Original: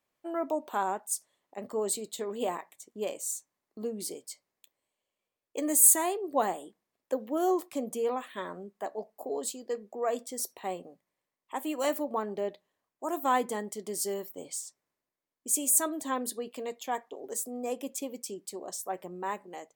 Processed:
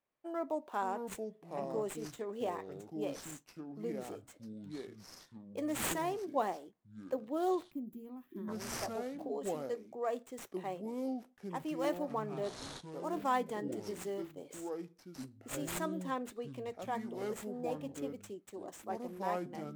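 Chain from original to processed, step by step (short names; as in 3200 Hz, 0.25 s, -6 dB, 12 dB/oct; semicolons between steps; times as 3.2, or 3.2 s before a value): median filter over 9 samples; echoes that change speed 0.467 s, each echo -6 st, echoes 2, each echo -6 dB; spectral gain 7.71–8.48, 390–11000 Hz -20 dB; gain -5.5 dB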